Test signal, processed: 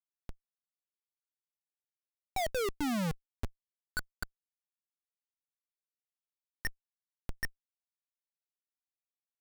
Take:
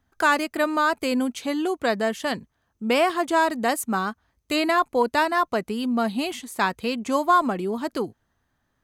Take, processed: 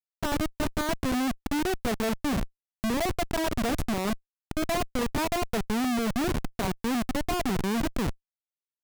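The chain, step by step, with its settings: bass shelf 140 Hz +10 dB; reverse; compression 5:1, threshold -34 dBFS; reverse; small resonant body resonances 230/450/680 Hz, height 9 dB, ringing for 45 ms; Schmitt trigger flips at -29.5 dBFS; trim +5.5 dB

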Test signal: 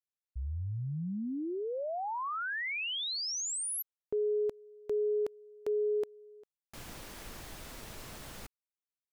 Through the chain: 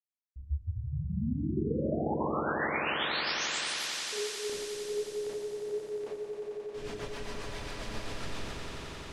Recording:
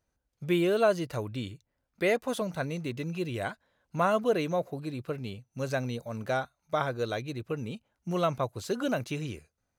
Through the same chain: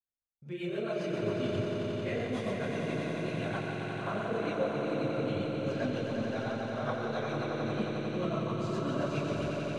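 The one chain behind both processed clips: expander -49 dBFS; reverse; compression 4:1, threshold -41 dBFS; reverse; distance through air 82 m; Schroeder reverb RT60 1.5 s, combs from 28 ms, DRR -10 dB; rotary cabinet horn 7.5 Hz; reverb removal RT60 1.5 s; on a send: echo with a slow build-up 89 ms, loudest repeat 5, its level -6.5 dB

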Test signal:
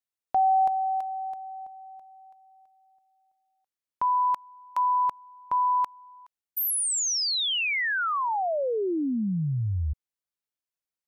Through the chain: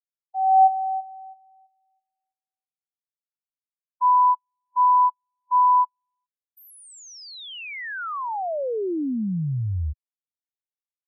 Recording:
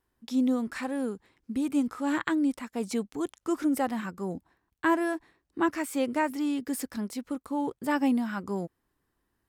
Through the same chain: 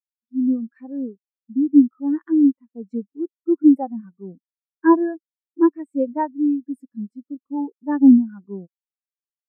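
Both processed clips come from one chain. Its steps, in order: level rider gain up to 9 dB; spectral contrast expander 2.5:1

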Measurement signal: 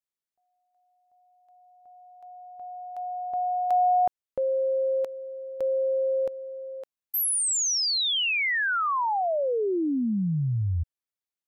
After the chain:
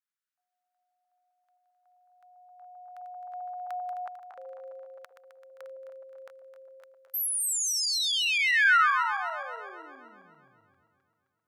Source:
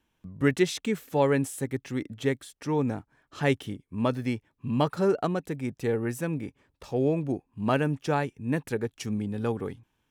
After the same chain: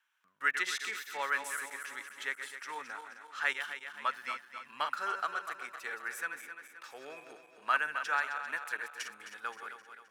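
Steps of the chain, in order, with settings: backward echo that repeats 131 ms, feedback 69%, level -8 dB; resonant high-pass 1.4 kHz, resonance Q 3.2; trim -4.5 dB

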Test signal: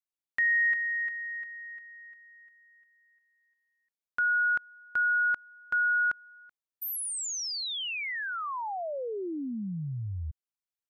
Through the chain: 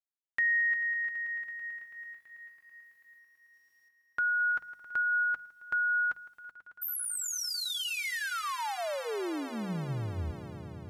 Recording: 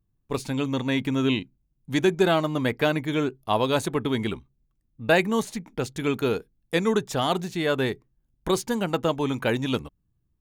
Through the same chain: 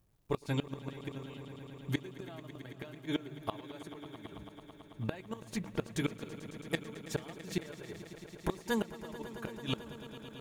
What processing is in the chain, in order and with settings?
comb of notches 250 Hz; in parallel at -1 dB: compression 12:1, threshold -37 dBFS; on the sum: de-hum 49.62 Hz, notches 4; inverted gate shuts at -16 dBFS, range -25 dB; word length cut 12-bit, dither none; echo with a slow build-up 110 ms, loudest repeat 5, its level -17 dB; trim -3.5 dB

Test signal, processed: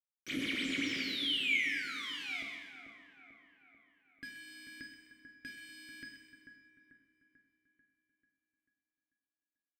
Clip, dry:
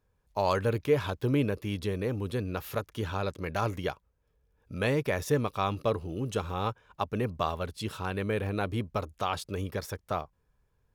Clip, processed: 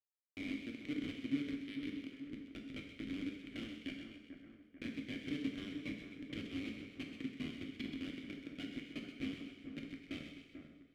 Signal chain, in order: resonant low shelf 580 Hz -7 dB, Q 3; hum notches 60/120/180/240 Hz; compression 6:1, threshold -33 dBFS; Schmitt trigger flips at -32 dBFS; vowel filter i; two-band feedback delay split 1.9 kHz, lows 441 ms, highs 128 ms, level -8 dB; two-slope reverb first 0.95 s, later 2.5 s, DRR 1.5 dB; trim +14 dB

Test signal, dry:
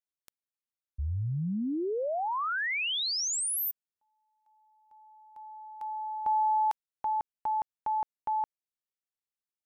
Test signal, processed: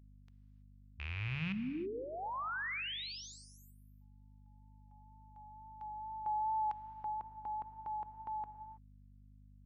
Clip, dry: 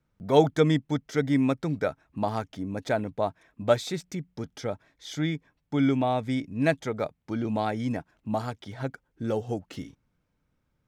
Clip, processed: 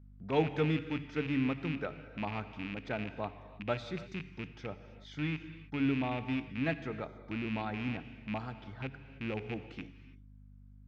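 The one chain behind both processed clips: rattle on loud lows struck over -31 dBFS, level -21 dBFS; high-pass 100 Hz; peaking EQ 590 Hz -6.5 dB 0.72 oct; de-hum 143.1 Hz, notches 3; hum 50 Hz, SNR 18 dB; distance through air 220 m; gated-style reverb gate 350 ms flat, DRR 11 dB; wow and flutter 26 cents; trim -6.5 dB

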